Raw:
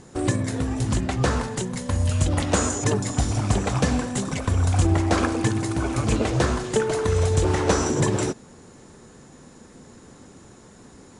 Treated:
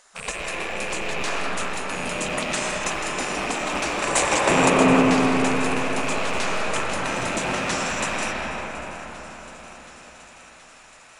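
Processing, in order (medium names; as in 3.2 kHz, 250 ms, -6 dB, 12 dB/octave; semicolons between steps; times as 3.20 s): rattle on loud lows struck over -28 dBFS, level -21 dBFS; spectral gate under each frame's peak -15 dB weak; 4.02–4.70 s: graphic EQ 125/250/500/1000/2000/4000/8000 Hz +8/+9/+11/+10/+5/+4/+11 dB; thinning echo 726 ms, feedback 76%, high-pass 730 Hz, level -18 dB; reverberation RT60 5.1 s, pre-delay 80 ms, DRR -4 dB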